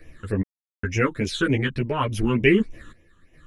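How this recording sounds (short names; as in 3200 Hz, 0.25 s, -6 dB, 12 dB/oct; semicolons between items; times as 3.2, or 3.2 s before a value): phasing stages 8, 3.4 Hz, lowest notch 650–1300 Hz; random-step tremolo 2.4 Hz, depth 100%; a shimmering, thickened sound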